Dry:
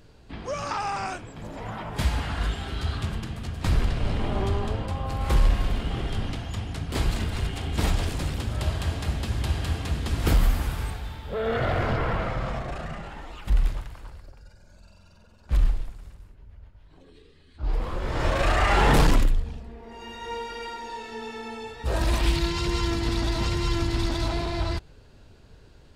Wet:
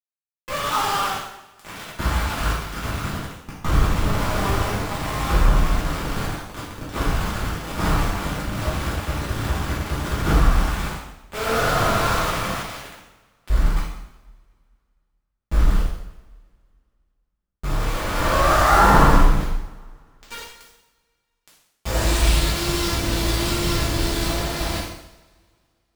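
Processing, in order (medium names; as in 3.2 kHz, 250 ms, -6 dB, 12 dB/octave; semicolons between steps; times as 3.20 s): low-pass sweep 1.3 kHz -> 11 kHz, 19.21–22.52 s; small samples zeroed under -24 dBFS; two-slope reverb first 0.79 s, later 2.4 s, from -24 dB, DRR -7.5 dB; trim -4 dB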